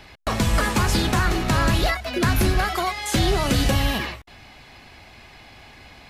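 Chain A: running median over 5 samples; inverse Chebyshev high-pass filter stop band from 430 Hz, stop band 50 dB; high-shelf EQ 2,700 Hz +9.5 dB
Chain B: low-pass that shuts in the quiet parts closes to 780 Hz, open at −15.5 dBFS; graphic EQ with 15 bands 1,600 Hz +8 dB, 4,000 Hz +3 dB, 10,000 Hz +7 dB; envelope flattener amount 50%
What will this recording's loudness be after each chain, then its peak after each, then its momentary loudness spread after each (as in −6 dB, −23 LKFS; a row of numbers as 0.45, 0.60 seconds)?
−22.5, −18.0 LKFS; −7.0, −5.5 dBFS; 21, 17 LU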